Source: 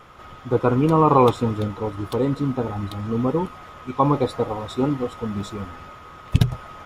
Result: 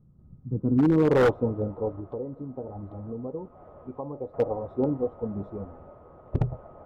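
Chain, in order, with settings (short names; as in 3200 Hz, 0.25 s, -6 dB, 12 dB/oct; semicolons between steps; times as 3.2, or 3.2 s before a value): 1.99–4.34 compressor 6:1, threshold -29 dBFS, peak gain reduction 15 dB; low-pass sweep 170 Hz -> 610 Hz, 0.46–1.3; wavefolder -7.5 dBFS; gain -6.5 dB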